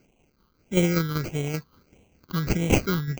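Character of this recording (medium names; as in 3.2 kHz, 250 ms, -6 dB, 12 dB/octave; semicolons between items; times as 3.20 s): a quantiser's noise floor 10-bit, dither triangular; tremolo saw down 5.2 Hz, depth 50%; aliases and images of a low sample rate 1.8 kHz, jitter 0%; phasing stages 6, 1.6 Hz, lowest notch 650–1300 Hz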